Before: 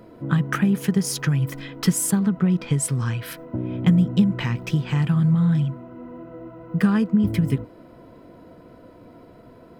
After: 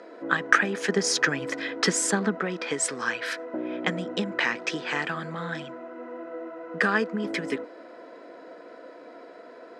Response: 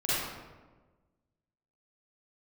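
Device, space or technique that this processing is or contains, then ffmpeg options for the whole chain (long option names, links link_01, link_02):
phone speaker on a table: -filter_complex "[0:a]asettb=1/sr,asplit=3[link_01][link_02][link_03];[link_01]atrim=end=0.894[link_04];[link_02]atrim=start=0.89:end=2.41,asetpts=PTS-STARTPTS,afade=type=in:duration=0.004:curve=qsin,afade=type=out:start_time=1.516:duration=0.004:curve=qsin,lowshelf=frequency=410:gain=7.5[link_05];[link_03]atrim=start=2.406[link_06];[link_04][link_05]acrossfade=duration=0.004:curve1=hsin:curve2=qsin[link_07];[link_07][link_06]acrossfade=duration=0.004:curve1=qsin:curve2=hsin,highpass=frequency=350:width=0.5412,highpass=frequency=350:width=1.3066,equalizer=frequency=370:width_type=q:width=4:gain=-4,equalizer=frequency=970:width_type=q:width=4:gain=-4,equalizer=frequency=1700:width_type=q:width=4:gain=6,equalizer=frequency=3000:width_type=q:width=4:gain=-4,lowpass=frequency=7200:width=0.5412,lowpass=frequency=7200:width=1.3066,volume=5.5dB"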